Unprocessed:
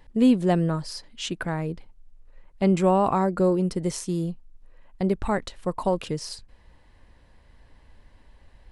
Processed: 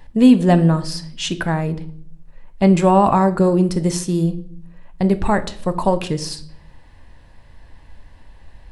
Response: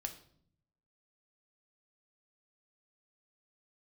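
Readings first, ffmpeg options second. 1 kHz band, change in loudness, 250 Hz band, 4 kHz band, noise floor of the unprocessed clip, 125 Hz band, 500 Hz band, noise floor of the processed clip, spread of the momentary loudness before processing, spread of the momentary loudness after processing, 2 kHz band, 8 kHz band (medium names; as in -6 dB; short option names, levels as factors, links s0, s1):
+8.0 dB, +7.5 dB, +8.0 dB, +7.5 dB, -56 dBFS, +9.0 dB, +6.0 dB, -46 dBFS, 13 LU, 14 LU, +8.0 dB, +7.5 dB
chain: -filter_complex "[0:a]asplit=2[s0][s1];[1:a]atrim=start_sample=2205[s2];[s1][s2]afir=irnorm=-1:irlink=0,volume=1.78[s3];[s0][s3]amix=inputs=2:normalize=0"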